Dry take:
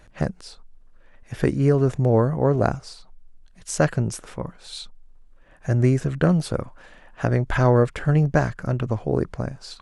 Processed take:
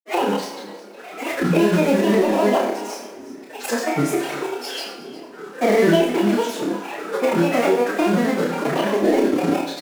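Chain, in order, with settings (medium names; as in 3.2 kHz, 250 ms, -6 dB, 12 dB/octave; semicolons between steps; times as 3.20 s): block-companded coder 3-bit; high-pass 160 Hz 24 dB/octave; de-hum 203.4 Hz, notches 34; compression 10:1, threshold -27 dBFS, peak gain reduction 15 dB; peak limiter -21.5 dBFS, peak gain reduction 9.5 dB; small resonant body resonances 340/660/2000 Hz, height 16 dB, ringing for 25 ms; formant-preserving pitch shift +10 st; granulator 100 ms, spray 100 ms, pitch spread up and down by 7 st; doubling 29 ms -3 dB; delay 359 ms -21 dB; Schroeder reverb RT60 0.58 s, combs from 32 ms, DRR 5 dB; three bands compressed up and down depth 40%; trim +5.5 dB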